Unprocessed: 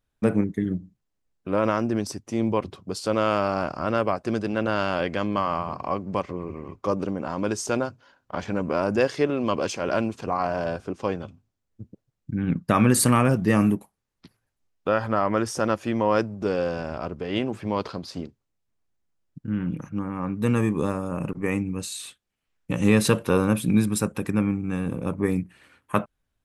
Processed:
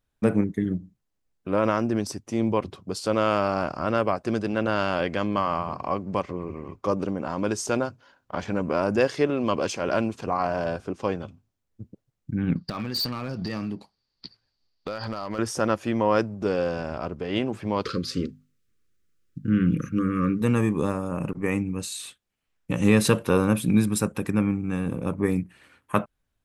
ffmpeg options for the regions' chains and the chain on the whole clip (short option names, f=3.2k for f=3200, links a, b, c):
-filter_complex "[0:a]asettb=1/sr,asplit=3[a][b][c];[a]atrim=end=12.564[d];[b]atrim=start=12.56:end=15.39,asetpts=PTS-STARTPTS,afade=t=in:d=0.004:c=qsin,afade=t=out:st=2.826:d=0.004:c=qsin,acompressor=threshold=-26dB:ratio=12:attack=3.2:release=140:knee=1:detection=peak,lowpass=f=4.6k:t=q:w=15,asoftclip=type=hard:threshold=-23.5dB[e];[c]atrim=start=15.386[f];[d][e]acrossfade=d=0.004:c1=hsin:c2=qsin[g];[g][f]acrossfade=d=0.004:c1=qsin:c2=hsin,asettb=1/sr,asplit=3[h][i][j];[h]atrim=end=17.854[k];[i]atrim=start=17.85:end=20.42,asetpts=PTS-STARTPTS,afade=t=in:d=0.004:c=qsin,afade=t=out:st=2.566:d=0.004:c=qsin,bandreject=f=50:t=h:w=6,bandreject=f=100:t=h:w=6,bandreject=f=150:t=h:w=6,bandreject=f=200:t=h:w=6,bandreject=f=250:t=h:w=6,acontrast=71,asuperstop=centerf=780:order=12:qfactor=1.3[l];[j]atrim=start=20.416[m];[k][l]acrossfade=d=0.004:c1=hsin:c2=qsin[n];[n][m]acrossfade=d=0.004:c1=qsin:c2=hsin"